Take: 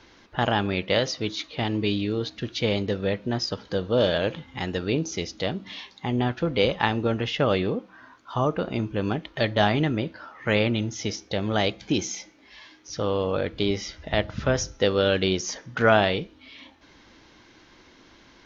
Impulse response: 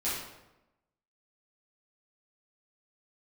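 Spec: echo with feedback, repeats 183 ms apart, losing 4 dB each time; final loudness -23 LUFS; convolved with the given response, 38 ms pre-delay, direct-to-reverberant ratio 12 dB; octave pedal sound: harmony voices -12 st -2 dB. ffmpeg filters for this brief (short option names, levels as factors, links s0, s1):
-filter_complex "[0:a]aecho=1:1:183|366|549|732|915|1098|1281|1464|1647:0.631|0.398|0.25|0.158|0.0994|0.0626|0.0394|0.0249|0.0157,asplit=2[s0][s1];[1:a]atrim=start_sample=2205,adelay=38[s2];[s1][s2]afir=irnorm=-1:irlink=0,volume=0.119[s3];[s0][s3]amix=inputs=2:normalize=0,asplit=2[s4][s5];[s5]asetrate=22050,aresample=44100,atempo=2,volume=0.794[s6];[s4][s6]amix=inputs=2:normalize=0,volume=0.891"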